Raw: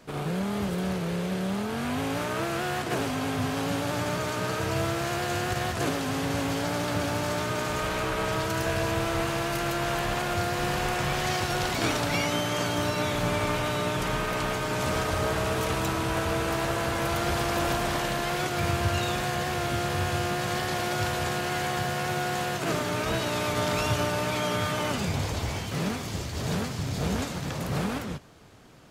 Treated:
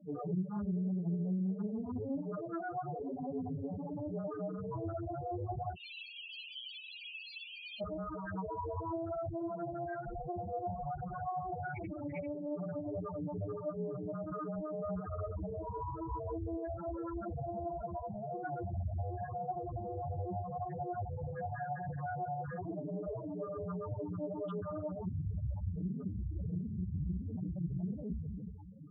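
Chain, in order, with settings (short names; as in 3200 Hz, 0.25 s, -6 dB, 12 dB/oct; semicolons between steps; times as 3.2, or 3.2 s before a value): reverb RT60 1.6 s, pre-delay 8 ms, DRR -3 dB; flange 0.87 Hz, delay 5 ms, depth 8.9 ms, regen +72%; 5.75–7.81 steep high-pass 2400 Hz 96 dB/oct; compressor 12:1, threshold -35 dBFS, peak gain reduction 15 dB; loudest bins only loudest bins 4; Doppler distortion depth 0.3 ms; gain +4.5 dB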